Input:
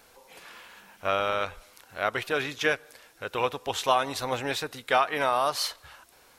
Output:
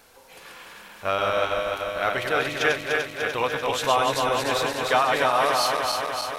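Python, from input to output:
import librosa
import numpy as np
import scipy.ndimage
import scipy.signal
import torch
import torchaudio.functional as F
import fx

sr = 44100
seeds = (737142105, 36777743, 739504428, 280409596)

p1 = fx.reverse_delay_fb(x, sr, ms=148, feedback_pct=81, wet_db=-3.5)
p2 = 10.0 ** (-20.5 / 20.0) * np.tanh(p1 / 10.0 ** (-20.5 / 20.0))
y = p1 + (p2 * librosa.db_to_amplitude(-10.5))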